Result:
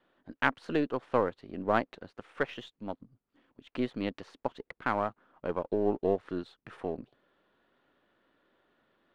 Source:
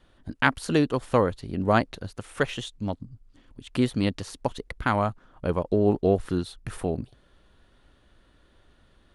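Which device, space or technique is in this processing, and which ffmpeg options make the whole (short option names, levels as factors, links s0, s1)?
crystal radio: -af "highpass=260,lowpass=2600,aeval=exprs='if(lt(val(0),0),0.708*val(0),val(0))':c=same,volume=0.631"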